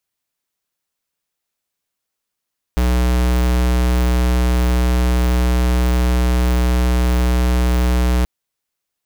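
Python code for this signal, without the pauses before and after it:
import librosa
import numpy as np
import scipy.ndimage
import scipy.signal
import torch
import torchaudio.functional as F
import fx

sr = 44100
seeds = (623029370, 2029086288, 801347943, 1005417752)

y = fx.tone(sr, length_s=5.48, wave='square', hz=61.4, level_db=-15.0)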